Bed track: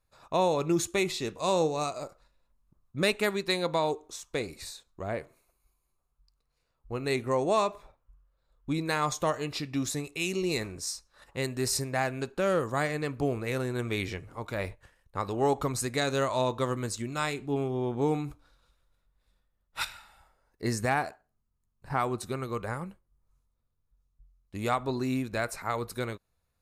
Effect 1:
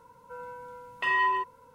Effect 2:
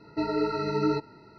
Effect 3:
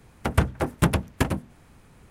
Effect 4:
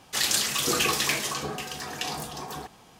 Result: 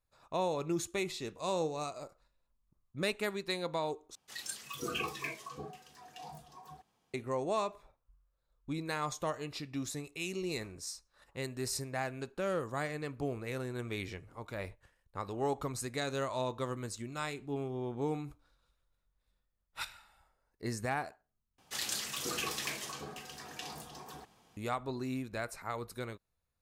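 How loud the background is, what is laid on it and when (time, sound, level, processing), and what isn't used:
bed track -7.5 dB
4.15 s: replace with 4 -10 dB + spectral noise reduction 13 dB
21.58 s: replace with 4 -12 dB
not used: 1, 2, 3

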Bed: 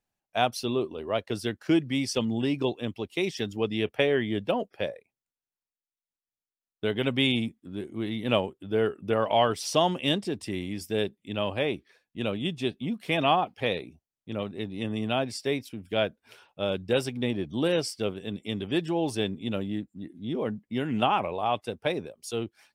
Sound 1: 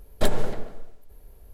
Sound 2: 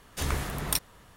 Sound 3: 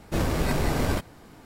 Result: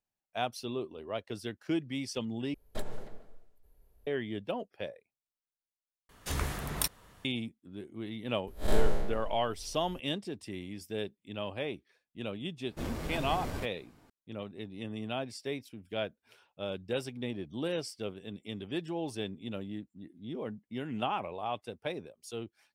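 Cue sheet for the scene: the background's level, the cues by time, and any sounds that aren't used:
bed -8.5 dB
2.54 s: replace with 1 -15.5 dB
6.09 s: replace with 2 -3.5 dB
8.47 s: add 1 -2 dB + spectral blur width 124 ms
12.65 s: add 3 -12.5 dB

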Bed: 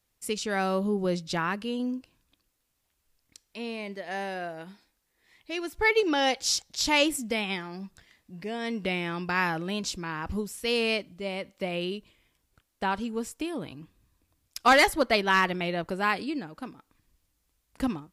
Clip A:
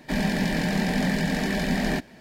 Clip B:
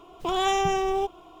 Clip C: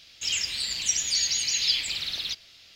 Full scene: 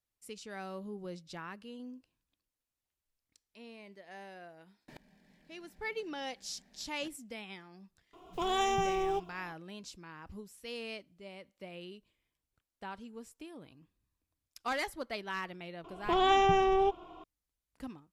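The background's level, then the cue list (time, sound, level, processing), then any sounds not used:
bed -15.5 dB
4.88 s: add A -3.5 dB + inverted gate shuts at -32 dBFS, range -38 dB
8.13 s: add B -6.5 dB
15.84 s: add B -1.5 dB + low-pass 3.7 kHz
not used: C

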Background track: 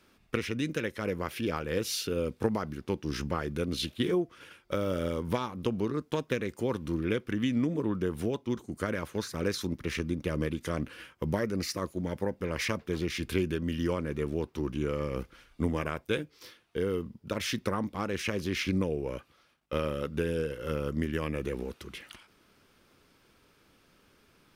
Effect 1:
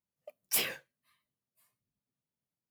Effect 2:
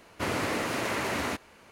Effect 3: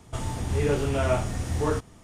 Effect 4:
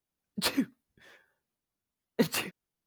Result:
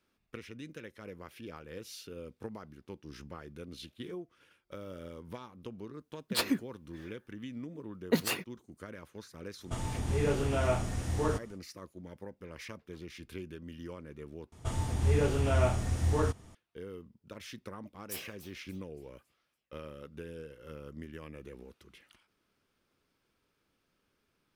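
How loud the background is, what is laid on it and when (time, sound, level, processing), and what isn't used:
background track -14 dB
5.93 s: add 4 -1 dB
9.58 s: add 3 -5 dB, fades 0.10 s
14.52 s: replace with 3 -4.5 dB + peaking EQ 85 Hz +6.5 dB 0.38 oct
17.58 s: add 1 -12 dB + modulated delay 283 ms, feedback 43%, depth 216 cents, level -14.5 dB
not used: 2

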